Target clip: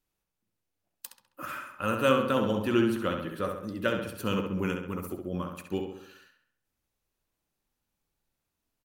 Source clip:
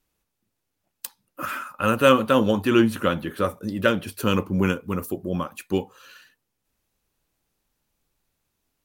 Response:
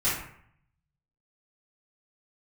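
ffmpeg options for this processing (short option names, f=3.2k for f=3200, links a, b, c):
-filter_complex "[0:a]asplit=2[a][b];[b]adelay=67,lowpass=f=4.1k:p=1,volume=-5dB,asplit=2[c][d];[d]adelay=67,lowpass=f=4.1k:p=1,volume=0.53,asplit=2[e][f];[f]adelay=67,lowpass=f=4.1k:p=1,volume=0.53,asplit=2[g][h];[h]adelay=67,lowpass=f=4.1k:p=1,volume=0.53,asplit=2[i][j];[j]adelay=67,lowpass=f=4.1k:p=1,volume=0.53,asplit=2[k][l];[l]adelay=67,lowpass=f=4.1k:p=1,volume=0.53,asplit=2[m][n];[n]adelay=67,lowpass=f=4.1k:p=1,volume=0.53[o];[a][c][e][g][i][k][m][o]amix=inputs=8:normalize=0,volume=-8.5dB"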